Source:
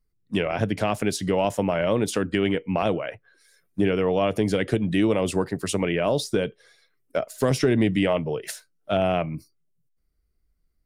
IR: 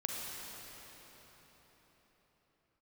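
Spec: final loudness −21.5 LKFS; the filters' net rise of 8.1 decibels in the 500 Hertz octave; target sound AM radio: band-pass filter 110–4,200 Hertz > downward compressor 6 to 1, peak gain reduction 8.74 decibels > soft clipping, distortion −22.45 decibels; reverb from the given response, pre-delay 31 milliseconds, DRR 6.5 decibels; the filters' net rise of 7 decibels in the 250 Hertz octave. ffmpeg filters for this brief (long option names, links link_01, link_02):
-filter_complex "[0:a]equalizer=frequency=250:width_type=o:gain=7,equalizer=frequency=500:width_type=o:gain=8,asplit=2[link_01][link_02];[1:a]atrim=start_sample=2205,adelay=31[link_03];[link_02][link_03]afir=irnorm=-1:irlink=0,volume=-9.5dB[link_04];[link_01][link_04]amix=inputs=2:normalize=0,highpass=110,lowpass=4200,acompressor=threshold=-16dB:ratio=6,asoftclip=threshold=-9.5dB,volume=1.5dB"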